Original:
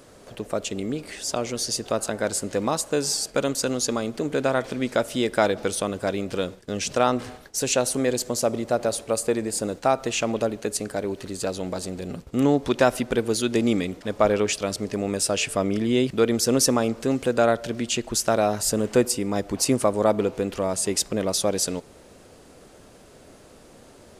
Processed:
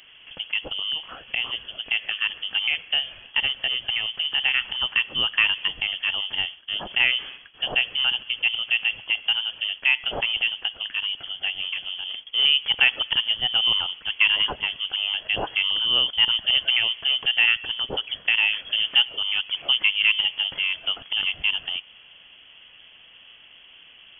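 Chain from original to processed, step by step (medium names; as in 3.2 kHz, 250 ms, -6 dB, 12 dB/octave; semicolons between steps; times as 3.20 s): frequency inversion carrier 3.3 kHz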